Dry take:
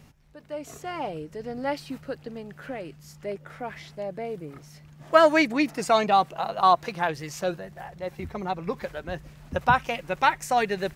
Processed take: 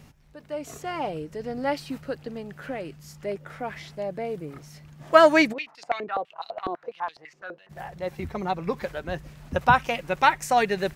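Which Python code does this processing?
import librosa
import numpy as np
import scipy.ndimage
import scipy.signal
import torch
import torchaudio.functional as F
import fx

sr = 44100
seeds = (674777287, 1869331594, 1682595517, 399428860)

y = fx.filter_held_bandpass(x, sr, hz=12.0, low_hz=360.0, high_hz=4200.0, at=(5.52, 7.69), fade=0.02)
y = y * librosa.db_to_amplitude(2.0)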